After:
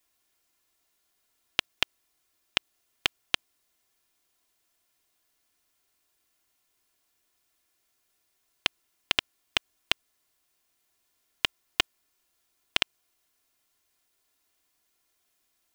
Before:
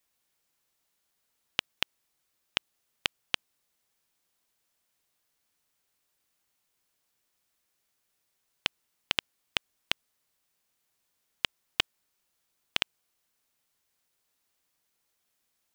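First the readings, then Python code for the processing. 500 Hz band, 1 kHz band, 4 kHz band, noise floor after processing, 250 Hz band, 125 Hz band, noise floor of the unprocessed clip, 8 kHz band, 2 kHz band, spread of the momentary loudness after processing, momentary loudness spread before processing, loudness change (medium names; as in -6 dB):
+3.5 dB, +3.5 dB, +3.0 dB, -75 dBFS, +3.5 dB, +1.5 dB, -78 dBFS, +3.5 dB, +3.5 dB, 3 LU, 3 LU, +3.0 dB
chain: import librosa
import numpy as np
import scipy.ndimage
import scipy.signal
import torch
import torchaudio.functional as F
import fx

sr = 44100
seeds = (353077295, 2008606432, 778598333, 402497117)

y = x + 0.44 * np.pad(x, (int(2.9 * sr / 1000.0), 0))[:len(x)]
y = F.gain(torch.from_numpy(y), 2.5).numpy()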